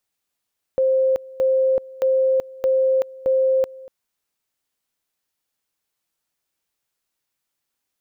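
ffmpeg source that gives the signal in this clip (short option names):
-f lavfi -i "aevalsrc='pow(10,(-14.5-21.5*gte(mod(t,0.62),0.38))/20)*sin(2*PI*526*t)':d=3.1:s=44100"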